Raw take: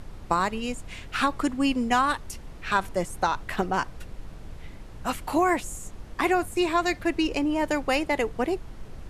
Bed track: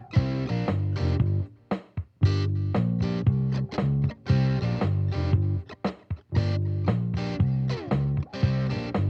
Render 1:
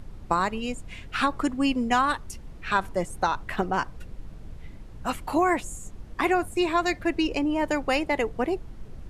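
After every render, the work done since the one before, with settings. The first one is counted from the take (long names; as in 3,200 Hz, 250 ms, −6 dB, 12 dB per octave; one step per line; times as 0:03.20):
broadband denoise 6 dB, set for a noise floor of −43 dBFS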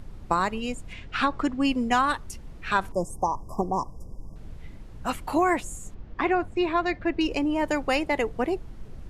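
0:00.93–0:01.65: low-pass filter 5,800 Hz
0:02.92–0:04.36: linear-phase brick-wall band-stop 1,200–4,800 Hz
0:05.94–0:07.21: high-frequency loss of the air 190 metres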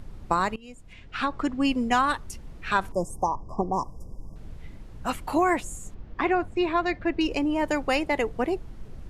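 0:00.56–0:01.59: fade in, from −20.5 dB
0:03.29–0:03.72: low-pass filter 4,400 Hz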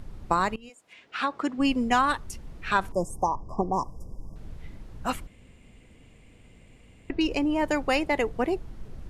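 0:00.68–0:01.58: high-pass filter 610 Hz → 200 Hz
0:05.27–0:07.10: fill with room tone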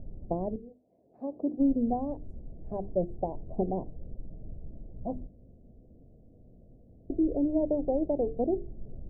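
elliptic low-pass filter 670 Hz, stop band 50 dB
mains-hum notches 50/100/150/200/250/300/350/400/450 Hz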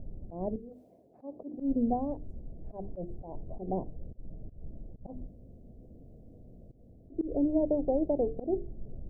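volume swells 142 ms
reversed playback
upward compression, threshold −44 dBFS
reversed playback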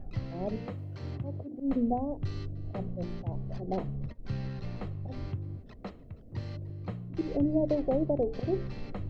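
mix in bed track −13.5 dB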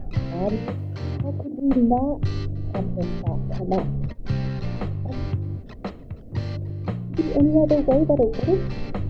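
level +10 dB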